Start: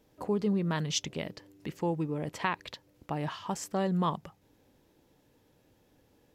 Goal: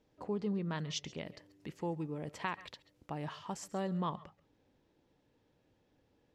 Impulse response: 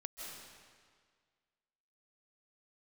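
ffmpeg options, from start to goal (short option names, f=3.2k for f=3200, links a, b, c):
-filter_complex "[0:a]asetnsamples=n=441:p=0,asendcmd='1.26 lowpass f 11000;3.93 lowpass f 5100',lowpass=6k[a];[1:a]atrim=start_sample=2205,atrim=end_sample=6174[b];[a][b]afir=irnorm=-1:irlink=0,volume=-1.5dB"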